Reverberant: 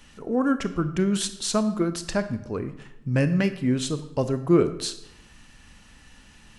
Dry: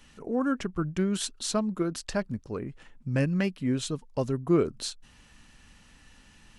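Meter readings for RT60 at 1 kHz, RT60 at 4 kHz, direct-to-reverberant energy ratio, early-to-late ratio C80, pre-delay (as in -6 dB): 0.85 s, 0.60 s, 10.5 dB, 15.0 dB, 24 ms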